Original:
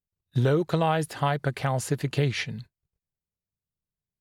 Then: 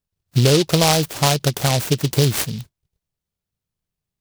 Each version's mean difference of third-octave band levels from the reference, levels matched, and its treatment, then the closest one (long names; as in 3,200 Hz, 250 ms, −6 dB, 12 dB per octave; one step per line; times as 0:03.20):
7.5 dB: short delay modulated by noise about 3,900 Hz, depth 0.16 ms
level +8 dB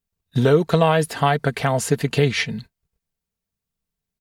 1.5 dB: comb filter 4.4 ms, depth 44%
level +7 dB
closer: second